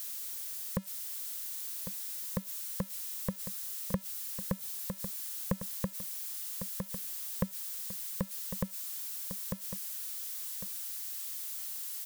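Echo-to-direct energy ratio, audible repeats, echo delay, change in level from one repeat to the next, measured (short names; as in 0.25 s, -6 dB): -10.5 dB, 1, 1.102 s, no steady repeat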